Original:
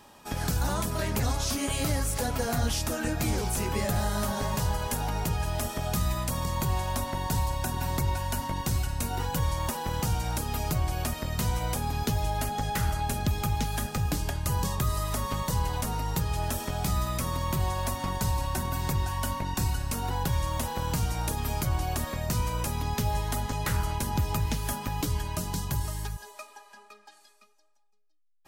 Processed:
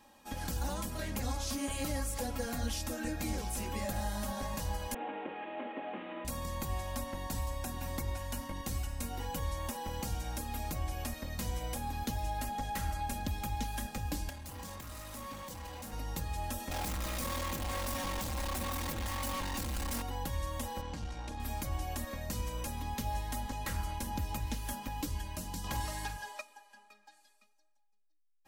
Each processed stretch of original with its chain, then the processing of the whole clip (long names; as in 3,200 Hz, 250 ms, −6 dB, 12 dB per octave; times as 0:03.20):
0:04.94–0:06.25: variable-slope delta modulation 16 kbit/s + high-pass filter 260 Hz 24 dB per octave + parametric band 360 Hz +8 dB 1.4 octaves
0:14.29–0:15.93: high-pass filter 71 Hz + hard clipping −34 dBFS
0:16.71–0:20.02: leveller curve on the samples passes 5 + hard clipping −27.5 dBFS
0:20.81–0:21.40: low-pass filter 5,100 Hz + tube saturation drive 24 dB, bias 0.5
0:25.64–0:26.41: low-shelf EQ 330 Hz +5 dB + mid-hump overdrive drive 17 dB, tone 3,600 Hz, clips at −15 dBFS + flutter between parallel walls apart 7.8 metres, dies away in 0.24 s
whole clip: parametric band 1,300 Hz −3 dB 0.33 octaves; comb filter 3.7 ms, depth 63%; level −9 dB